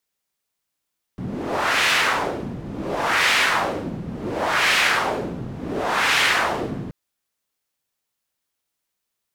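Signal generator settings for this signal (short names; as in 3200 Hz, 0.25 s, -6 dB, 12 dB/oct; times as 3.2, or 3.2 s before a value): wind-like swept noise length 5.73 s, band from 170 Hz, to 2300 Hz, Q 1.5, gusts 4, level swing 13 dB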